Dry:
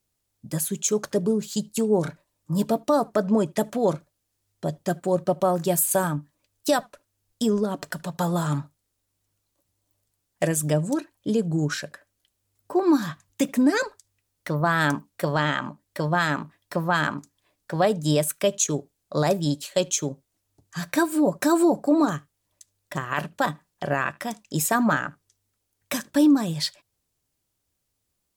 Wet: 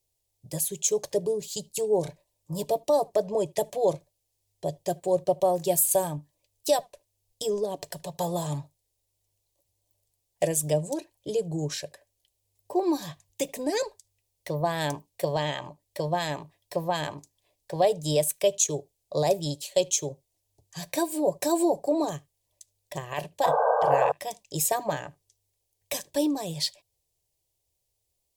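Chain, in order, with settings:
sound drawn into the spectrogram noise, 0:23.43–0:24.12, 440–1,600 Hz −18 dBFS
phaser with its sweep stopped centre 570 Hz, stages 4

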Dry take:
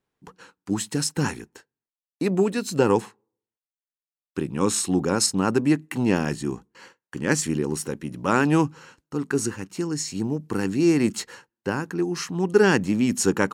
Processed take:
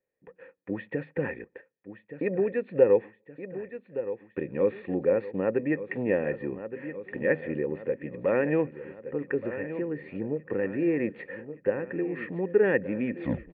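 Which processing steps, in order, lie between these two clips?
turntable brake at the end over 0.35 s
formant resonators in series e
automatic gain control gain up to 6 dB
repeating echo 1,170 ms, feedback 54%, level −15 dB
in parallel at +2.5 dB: downward compressor, threshold −39 dBFS, peak gain reduction 22.5 dB

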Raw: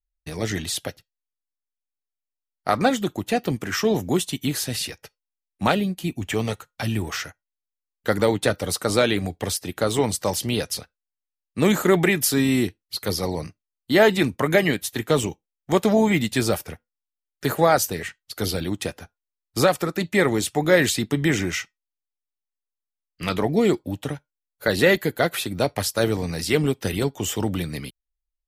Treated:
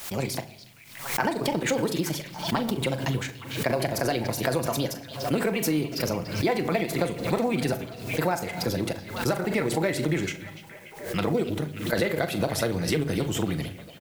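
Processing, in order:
gliding playback speed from 126% → 100%
high-shelf EQ 3,100 Hz −6 dB
floating-point word with a short mantissa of 4 bits
tempo change 1.8×
rectangular room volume 2,300 cubic metres, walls furnished, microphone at 0.74 metres
downward compressor, threshold −22 dBFS, peak gain reduction 10 dB
double-tracking delay 39 ms −12 dB
echo through a band-pass that steps 290 ms, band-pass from 3,600 Hz, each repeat −0.7 octaves, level −10 dB
background noise white −59 dBFS
background raised ahead of every attack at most 82 dB per second

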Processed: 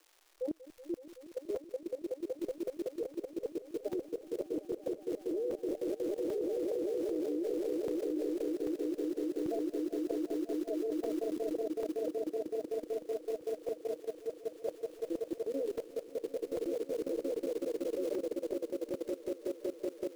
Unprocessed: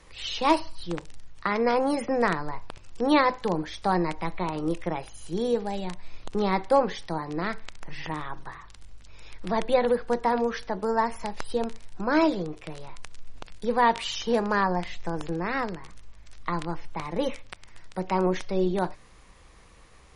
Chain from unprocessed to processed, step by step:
expanding power law on the bin magnitudes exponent 3.9
Butterworth low-pass 600 Hz 96 dB per octave
surface crackle 430 per second −51 dBFS
elliptic high-pass filter 320 Hz, stop band 40 dB
in parallel at +1 dB: compressor whose output falls as the input rises −36 dBFS, ratio −1
on the sum: gate with flip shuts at −21 dBFS, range −39 dB
on a send: echo that builds up and dies away 188 ms, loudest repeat 8, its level −7 dB
on the sum: output level in coarse steps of 17 dB
regular buffer underruns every 0.79 s, samples 128, zero, from 0:00.77

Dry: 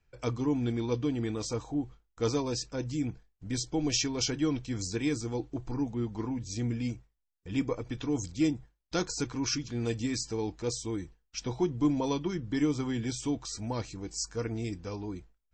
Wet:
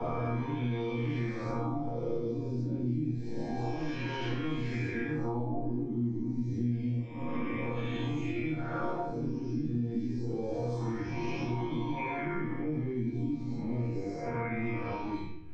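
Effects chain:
peak hold with a rise ahead of every peak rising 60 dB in 1.59 s
0:11.95–0:14.54: parametric band 2,200 Hz +15 dB 0.74 octaves
brickwall limiter −23 dBFS, peak gain reduction 10 dB
resonators tuned to a chord D#2 fifth, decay 0.42 s
auto-filter low-pass sine 0.28 Hz 280–3,000 Hz
rectangular room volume 350 cubic metres, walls furnished, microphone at 7.8 metres
multiband upward and downward compressor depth 100%
level −5 dB

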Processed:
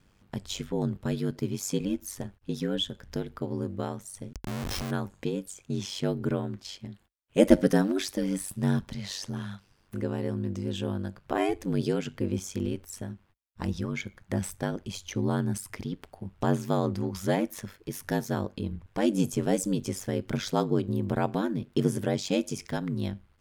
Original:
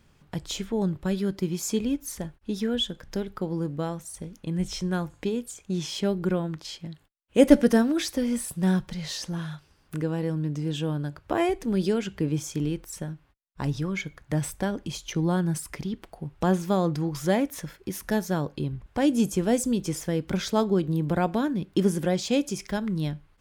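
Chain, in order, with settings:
0:04.33–0:04.91: comparator with hysteresis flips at −38.5 dBFS
ring modulation 48 Hz

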